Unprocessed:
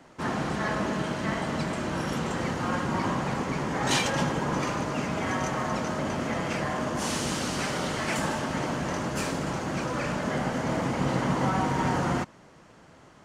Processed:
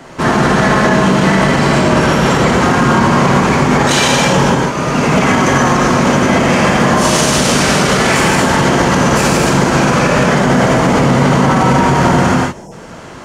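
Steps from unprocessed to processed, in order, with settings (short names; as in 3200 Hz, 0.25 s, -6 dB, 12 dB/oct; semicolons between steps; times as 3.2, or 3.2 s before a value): 1.66–2.48 high shelf 7700 Hz -5.5 dB; 4.43–5.27 fade in; 12.39–12.72 spectral gain 1000–5000 Hz -25 dB; non-linear reverb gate 0.3 s flat, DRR -3.5 dB; maximiser +18 dB; gain -1 dB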